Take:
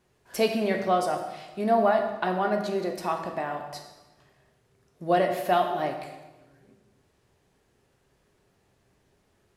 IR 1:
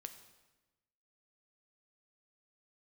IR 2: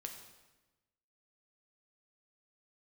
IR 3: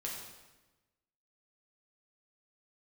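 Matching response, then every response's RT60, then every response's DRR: 2; 1.1 s, 1.1 s, 1.1 s; 7.5 dB, 3.0 dB, -3.5 dB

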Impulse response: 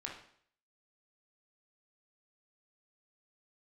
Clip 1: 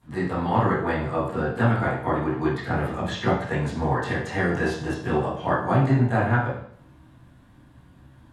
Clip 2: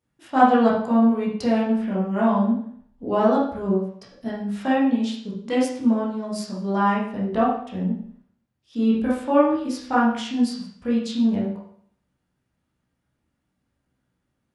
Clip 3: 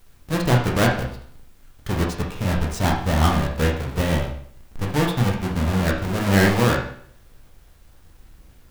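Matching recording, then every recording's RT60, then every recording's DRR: 3; 0.60 s, 0.60 s, 0.60 s; -15.5 dB, -8.0 dB, -1.5 dB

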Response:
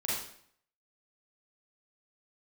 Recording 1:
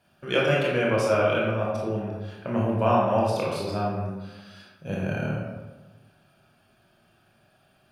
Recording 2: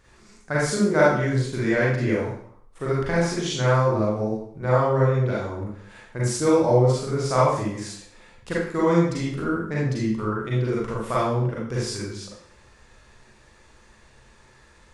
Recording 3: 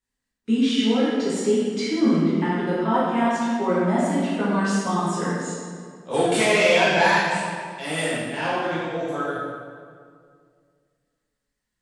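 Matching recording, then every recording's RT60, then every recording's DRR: 2; 1.3 s, 0.60 s, 2.1 s; -4.5 dB, -7.0 dB, -9.5 dB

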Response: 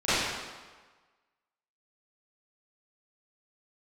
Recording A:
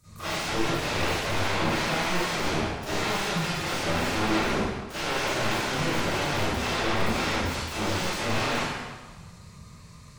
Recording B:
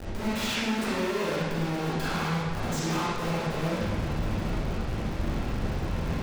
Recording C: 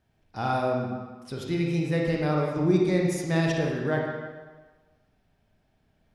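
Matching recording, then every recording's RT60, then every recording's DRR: A; 1.4 s, 1.4 s, 1.4 s; -18.0 dB, -10.0 dB, -1.5 dB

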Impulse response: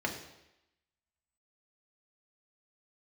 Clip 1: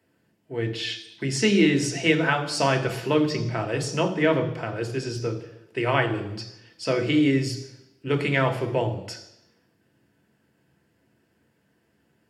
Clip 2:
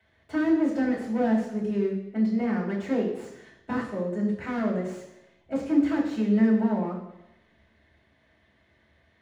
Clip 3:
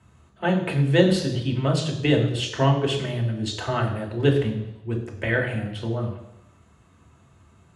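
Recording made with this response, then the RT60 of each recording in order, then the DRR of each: 3; 0.90 s, 0.90 s, 0.90 s; 4.5 dB, -5.5 dB, 0.5 dB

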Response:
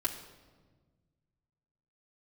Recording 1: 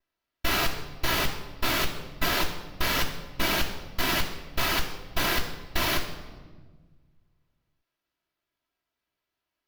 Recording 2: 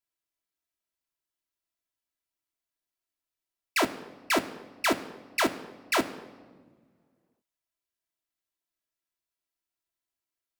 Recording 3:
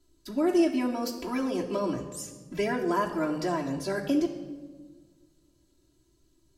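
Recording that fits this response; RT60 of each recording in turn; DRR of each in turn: 3; no single decay rate, no single decay rate, no single decay rate; -15.0 dB, 3.5 dB, -6.0 dB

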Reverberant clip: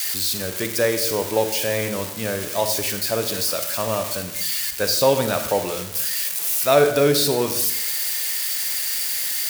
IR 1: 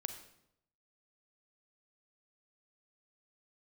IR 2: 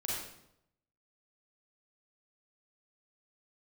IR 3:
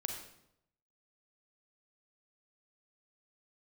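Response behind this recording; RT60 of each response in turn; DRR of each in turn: 1; 0.80 s, 0.80 s, 0.80 s; 7.5 dB, -5.5 dB, 3.0 dB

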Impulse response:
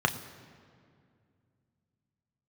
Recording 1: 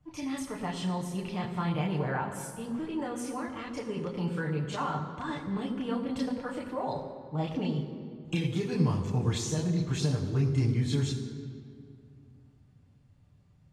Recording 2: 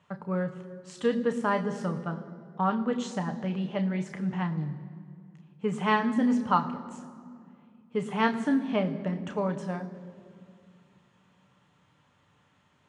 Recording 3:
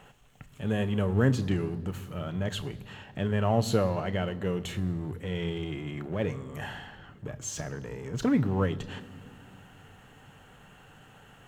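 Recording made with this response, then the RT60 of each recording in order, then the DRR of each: 2; 2.3 s, 2.3 s, 2.3 s; -4.5 dB, 5.5 dB, 13.0 dB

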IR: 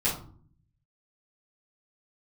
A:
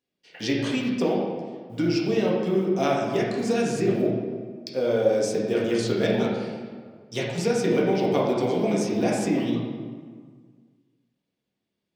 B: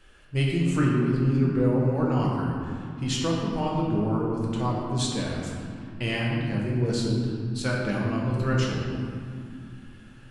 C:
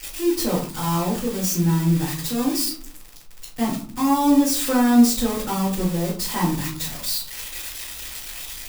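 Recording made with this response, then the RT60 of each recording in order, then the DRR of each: C; 1.8 s, 2.3 s, 0.50 s; -5.0 dB, -4.0 dB, -9.5 dB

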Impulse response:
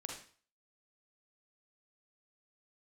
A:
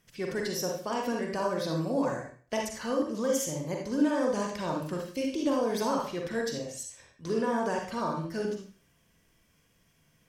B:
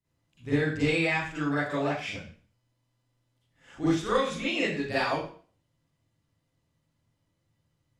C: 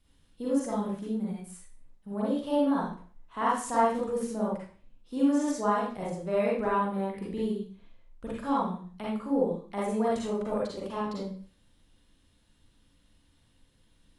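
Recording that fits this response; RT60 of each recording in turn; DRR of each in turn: A; 0.45 s, 0.45 s, 0.45 s; 0.0 dB, -13.0 dB, -7.0 dB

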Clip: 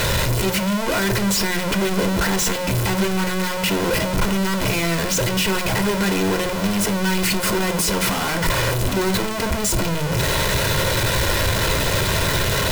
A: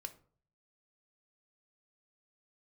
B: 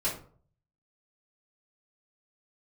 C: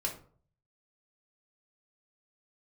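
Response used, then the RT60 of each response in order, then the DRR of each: A; 0.50 s, 0.50 s, 0.50 s; 7.5 dB, -9.0 dB, -1.0 dB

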